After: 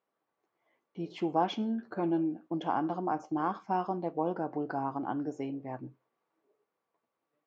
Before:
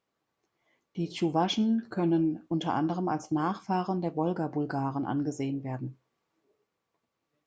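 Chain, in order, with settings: band-pass 760 Hz, Q 0.59

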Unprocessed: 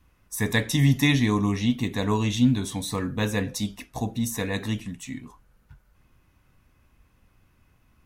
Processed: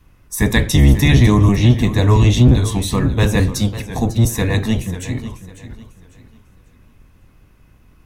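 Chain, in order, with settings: octaver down 1 oct, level +4 dB; maximiser +9 dB; warbling echo 0.547 s, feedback 31%, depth 98 cents, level -13.5 dB; gain -1.5 dB

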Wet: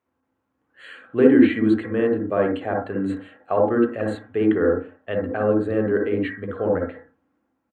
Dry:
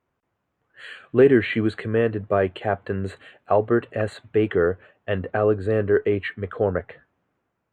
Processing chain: HPF 170 Hz 6 dB/oct; on a send: comb 3.7 ms, depth 66% + reverb RT60 0.30 s, pre-delay 47 ms, DRR 0.5 dB; on the sum: gain -3.5 dB

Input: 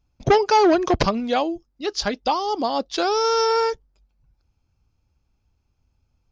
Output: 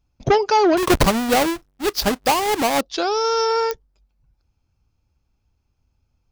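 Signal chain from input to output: 0.77–2.81 half-waves squared off; pops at 3.71, -9 dBFS

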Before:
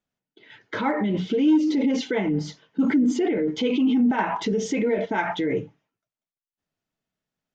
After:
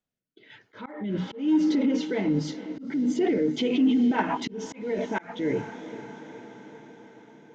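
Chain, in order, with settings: rotary speaker horn 1.1 Hz, later 7 Hz, at 2.64; diffused feedback echo 0.462 s, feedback 64%, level -14.5 dB; auto swell 0.325 s

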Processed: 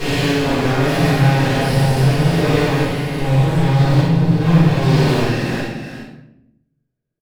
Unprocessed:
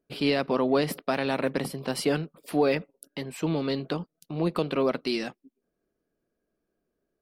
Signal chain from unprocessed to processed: stepped spectrum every 0.4 s; graphic EQ 125/1000/2000 Hz +11/-3/+5 dB; sample leveller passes 5; one-sided clip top -26 dBFS; tapped delay 60/374/415 ms -3.5/-10/-11 dB; reverb RT60 0.80 s, pre-delay 5 ms, DRR -11 dB; gain -10.5 dB

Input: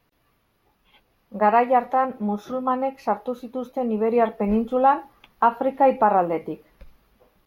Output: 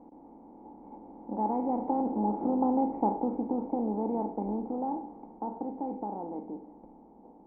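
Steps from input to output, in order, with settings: per-bin compression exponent 0.4; Doppler pass-by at 2.78, 8 m/s, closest 7.3 m; vocal tract filter u; gain +2 dB

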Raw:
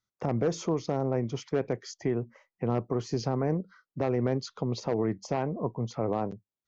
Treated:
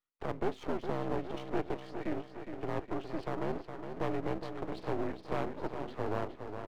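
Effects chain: mistuned SSB -76 Hz 340–3600 Hz; feedback echo 0.413 s, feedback 58%, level -8 dB; half-wave rectifier

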